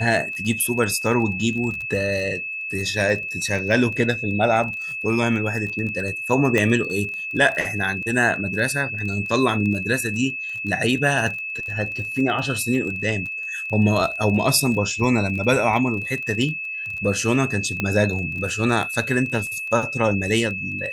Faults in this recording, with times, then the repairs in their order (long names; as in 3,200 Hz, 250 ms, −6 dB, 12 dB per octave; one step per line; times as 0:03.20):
surface crackle 26 per second −29 dBFS
whistle 2,600 Hz −27 dBFS
0:06.58: click −9 dBFS
0:17.80: click −10 dBFS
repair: click removal
notch filter 2,600 Hz, Q 30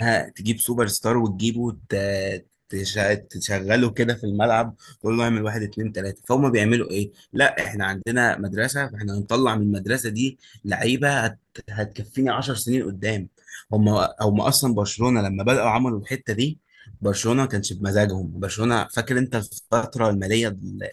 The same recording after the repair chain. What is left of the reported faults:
0:06.58: click